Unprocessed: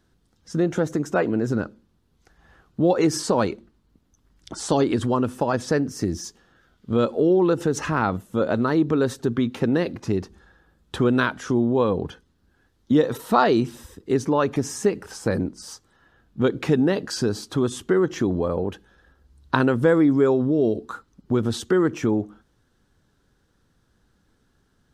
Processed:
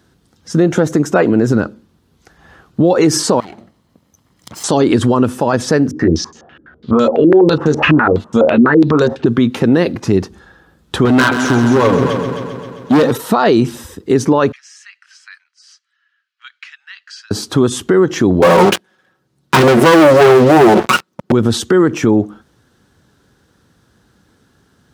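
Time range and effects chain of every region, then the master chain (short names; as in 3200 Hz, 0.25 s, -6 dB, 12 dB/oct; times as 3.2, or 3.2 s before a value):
3.4–4.64 minimum comb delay 0.97 ms + compressor 10:1, threshold -39 dBFS + HPF 89 Hz
5.91–9.26 doubler 13 ms -4 dB + stepped low-pass 12 Hz 300–6400 Hz
11.05–13.11 comb 7.1 ms, depth 63% + overloaded stage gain 19 dB + multi-head echo 0.132 s, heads first and second, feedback 56%, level -9.5 dB
14.52–17.31 Bessel high-pass 2800 Hz, order 8 + tape spacing loss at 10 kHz 30 dB + notch 3600 Hz
18.42–21.32 minimum comb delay 5.4 ms + HPF 160 Hz + sample leveller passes 5
whole clip: HPF 79 Hz; maximiser +13 dB; gain -1 dB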